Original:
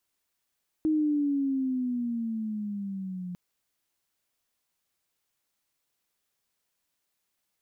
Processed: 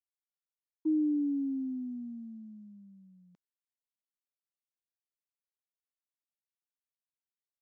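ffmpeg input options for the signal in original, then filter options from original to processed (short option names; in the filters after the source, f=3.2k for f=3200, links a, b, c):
-f lavfi -i "aevalsrc='pow(10,(-21.5-12*t/2.5)/20)*sin(2*PI*315*2.5/(-10*log(2)/12)*(exp(-10*log(2)/12*t/2.5)-1))':d=2.5:s=44100"
-af "agate=range=-33dB:threshold=-24dB:ratio=3:detection=peak,highpass=200,aresample=16000,aresample=44100"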